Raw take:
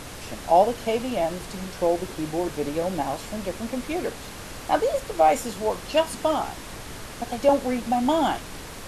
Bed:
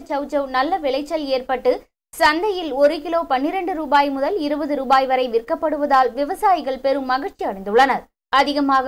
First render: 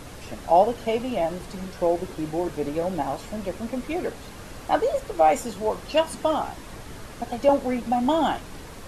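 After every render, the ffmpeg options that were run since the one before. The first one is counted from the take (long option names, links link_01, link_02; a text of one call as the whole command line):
ffmpeg -i in.wav -af "afftdn=noise_reduction=6:noise_floor=-39" out.wav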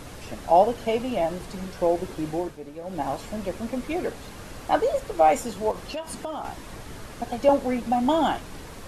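ffmpeg -i in.wav -filter_complex "[0:a]asettb=1/sr,asplit=3[link_01][link_02][link_03];[link_01]atrim=end=5.714[link_04];[link_02]atrim=start=5.71:end=6.45,asetpts=PTS-STARTPTS,afade=type=in:duration=0.004:curve=qsin,afade=type=out:start_time=0.736:duration=0.004:curve=qsin,acompressor=threshold=-29dB:ratio=6:attack=3.2:release=140:knee=1:detection=peak[link_05];[link_03]atrim=start=6.446[link_06];[link_04][link_05]acrossfade=duration=0.004:curve1=hsin:curve2=qsin[link_07];[link_07][link_06]acrossfade=duration=0.004:curve1=qsin:curve2=hsin,asplit=3[link_08][link_09][link_10];[link_08]atrim=end=2.58,asetpts=PTS-STARTPTS,afade=type=out:start_time=2.34:duration=0.24:silence=0.266073[link_11];[link_09]atrim=start=2.58:end=2.83,asetpts=PTS-STARTPTS,volume=-11.5dB[link_12];[link_10]atrim=start=2.83,asetpts=PTS-STARTPTS,afade=type=in:duration=0.24:silence=0.266073[link_13];[link_11][link_12][link_13]concat=n=3:v=0:a=1" out.wav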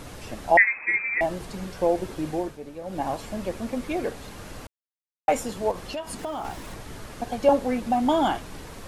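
ffmpeg -i in.wav -filter_complex "[0:a]asettb=1/sr,asplit=3[link_01][link_02][link_03];[link_01]atrim=end=0.574[link_04];[link_02]atrim=start=0.57:end=1.21,asetpts=PTS-STARTPTS,afade=type=in:duration=0.004:curve=qsin,afade=type=out:start_time=0.636:duration=0.004:curve=qsin,lowpass=frequency=2200:width_type=q:width=0.5098,lowpass=frequency=2200:width_type=q:width=0.6013,lowpass=frequency=2200:width_type=q:width=0.9,lowpass=frequency=2200:width_type=q:width=2.563,afreqshift=-2600[link_05];[link_03]atrim=start=1.206[link_06];[link_04][link_05]acrossfade=duration=0.004:curve1=hsin:curve2=qsin[link_07];[link_07][link_06]acrossfade=duration=0.004:curve1=qsin:curve2=hsin,asettb=1/sr,asplit=3[link_08][link_09][link_10];[link_08]atrim=end=6.194[link_11];[link_09]atrim=start=6.19:end=6.74,asetpts=PTS-STARTPTS,afade=type=in:duration=0.004:curve=qsin,afade=type=out:start_time=0.546:duration=0.004:curve=qsin,aeval=exprs='val(0)+0.5*0.00596*sgn(val(0))':channel_layout=same[link_12];[link_10]atrim=start=6.736[link_13];[link_11][link_12]acrossfade=duration=0.004:curve1=hsin:curve2=qsin[link_14];[link_14][link_13]acrossfade=duration=0.004:curve1=qsin:curve2=hsin,asplit=3[link_15][link_16][link_17];[link_15]atrim=end=4.67,asetpts=PTS-STARTPTS,afade=type=out:start_time=4.666:duration=0.004:curve=hsin[link_18];[link_16]atrim=start=4.67:end=5.28,asetpts=PTS-STARTPTS,volume=0[link_19];[link_17]atrim=start=5.28,asetpts=PTS-STARTPTS,afade=type=in:duration=0.004:curve=hsin[link_20];[link_18][link_19][link_20]concat=n=3:v=0:a=1" out.wav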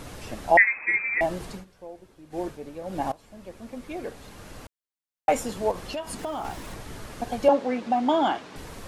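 ffmpeg -i in.wav -filter_complex "[0:a]asettb=1/sr,asplit=3[link_01][link_02][link_03];[link_01]atrim=end=7.484[link_04];[link_02]atrim=start=7.48:end=8.56,asetpts=PTS-STARTPTS,afade=type=in:duration=0.004:curve=qsin,afade=type=out:start_time=1.076:duration=0.004:curve=qsin,highpass=230,lowpass=5200[link_05];[link_03]atrim=start=8.556[link_06];[link_04][link_05]acrossfade=duration=0.004:curve1=hsin:curve2=qsin[link_07];[link_07][link_06]acrossfade=duration=0.004:curve1=qsin:curve2=hsin,asplit=4[link_08][link_09][link_10][link_11];[link_08]atrim=end=1.65,asetpts=PTS-STARTPTS,afade=type=out:start_time=1.45:duration=0.2:curve=qsin:silence=0.105925[link_12];[link_09]atrim=start=1.65:end=2.3,asetpts=PTS-STARTPTS,volume=-19.5dB[link_13];[link_10]atrim=start=2.3:end=3.12,asetpts=PTS-STARTPTS,afade=type=in:duration=0.2:curve=qsin:silence=0.105925,afade=type=out:start_time=0.816:duration=0.004:curve=hsin:silence=0.105925[link_14];[link_11]atrim=start=3.12,asetpts=PTS-STARTPTS,afade=type=in:duration=2.17:silence=0.105925[link_15];[link_12][link_13][link_14][link_15]concat=n=4:v=0:a=1" out.wav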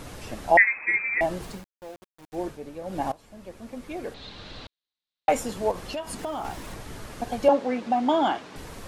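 ffmpeg -i in.wav -filter_complex "[0:a]asettb=1/sr,asplit=3[link_01][link_02][link_03];[link_01]atrim=end=1.424[link_04];[link_02]atrim=start=1.42:end=2.36,asetpts=PTS-STARTPTS,afade=type=in:duration=0.004:curve=qsin,afade=type=out:start_time=0.936:duration=0.004:curve=qsin,aeval=exprs='val(0)*gte(abs(val(0)),0.00596)':channel_layout=same[link_05];[link_03]atrim=start=2.356[link_06];[link_04][link_05]acrossfade=duration=0.004:curve1=hsin:curve2=qsin[link_07];[link_07][link_06]acrossfade=duration=0.004:curve1=qsin:curve2=hsin,asettb=1/sr,asplit=3[link_08][link_09][link_10];[link_08]atrim=end=4.144[link_11];[link_09]atrim=start=4.14:end=5.29,asetpts=PTS-STARTPTS,afade=type=in:duration=0.004:curve=qsin,afade=type=out:start_time=1.146:duration=0.004:curve=qsin,lowpass=frequency=3900:width_type=q:width=5.3[link_12];[link_10]atrim=start=5.286[link_13];[link_11][link_12]acrossfade=duration=0.004:curve1=hsin:curve2=qsin[link_14];[link_14][link_13]acrossfade=duration=0.004:curve1=qsin:curve2=hsin" out.wav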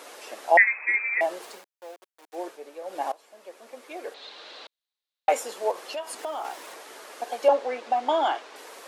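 ffmpeg -i in.wav -af "highpass=frequency=410:width=0.5412,highpass=frequency=410:width=1.3066" out.wav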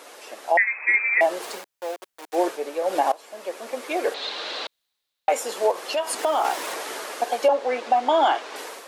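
ffmpeg -i in.wav -af "dynaudnorm=framelen=430:gausssize=3:maxgain=13dB,alimiter=limit=-10dB:level=0:latency=1:release=301" out.wav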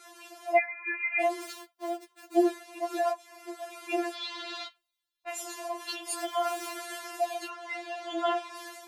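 ffmpeg -i in.wav -af "flanger=delay=9.2:depth=9:regen=-69:speed=0.67:shape=sinusoidal,afftfilt=real='re*4*eq(mod(b,16),0)':imag='im*4*eq(mod(b,16),0)':win_size=2048:overlap=0.75" out.wav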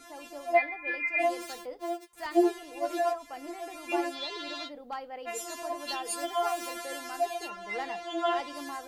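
ffmpeg -i in.wav -i bed.wav -filter_complex "[1:a]volume=-23.5dB[link_01];[0:a][link_01]amix=inputs=2:normalize=0" out.wav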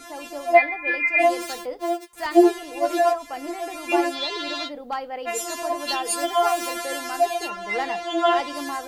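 ffmpeg -i in.wav -af "volume=9dB" out.wav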